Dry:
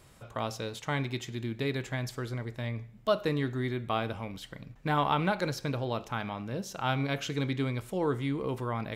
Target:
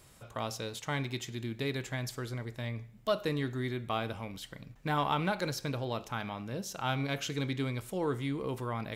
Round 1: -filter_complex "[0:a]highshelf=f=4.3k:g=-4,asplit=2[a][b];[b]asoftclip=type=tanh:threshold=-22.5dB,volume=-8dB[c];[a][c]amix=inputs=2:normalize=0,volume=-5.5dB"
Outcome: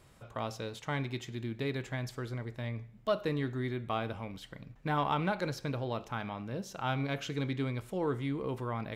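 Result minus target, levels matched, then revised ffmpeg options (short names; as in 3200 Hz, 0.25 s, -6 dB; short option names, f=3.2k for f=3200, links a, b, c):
8000 Hz band -7.0 dB
-filter_complex "[0:a]highshelf=f=4.3k:g=6.5,asplit=2[a][b];[b]asoftclip=type=tanh:threshold=-22.5dB,volume=-8dB[c];[a][c]amix=inputs=2:normalize=0,volume=-5.5dB"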